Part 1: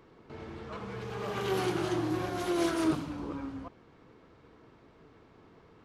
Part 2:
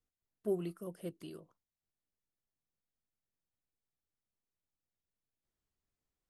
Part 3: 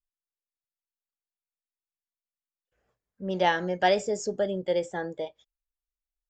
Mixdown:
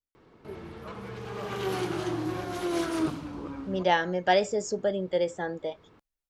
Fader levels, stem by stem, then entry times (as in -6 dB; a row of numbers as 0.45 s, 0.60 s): 0.0 dB, -10.0 dB, 0.0 dB; 0.15 s, 0.00 s, 0.45 s